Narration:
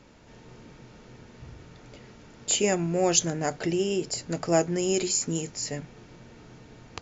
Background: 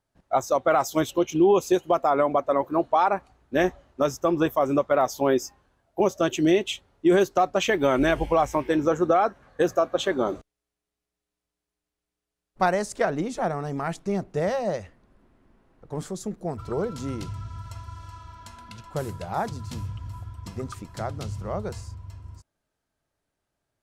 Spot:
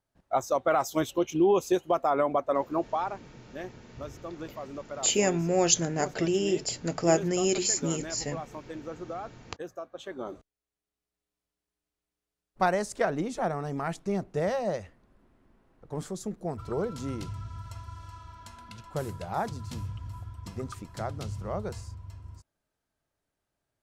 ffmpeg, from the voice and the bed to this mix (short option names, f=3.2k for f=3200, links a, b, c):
-filter_complex "[0:a]adelay=2550,volume=-0.5dB[a];[1:a]volume=10.5dB,afade=t=out:st=2.69:d=0.52:silence=0.211349,afade=t=in:st=9.99:d=1.28:silence=0.188365[b];[a][b]amix=inputs=2:normalize=0"